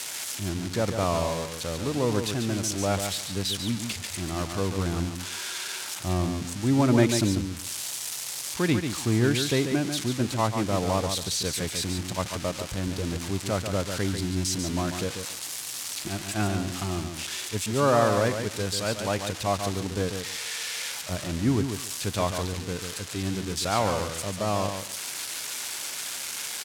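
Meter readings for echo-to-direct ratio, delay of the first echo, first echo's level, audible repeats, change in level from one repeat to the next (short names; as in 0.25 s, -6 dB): -7.0 dB, 0.142 s, -7.0 dB, 2, -15.5 dB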